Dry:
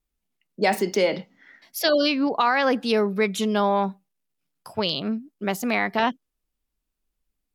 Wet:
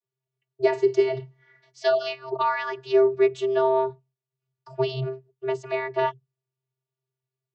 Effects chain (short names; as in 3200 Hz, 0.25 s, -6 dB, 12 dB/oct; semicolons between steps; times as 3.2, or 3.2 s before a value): vocoder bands 32, square 131 Hz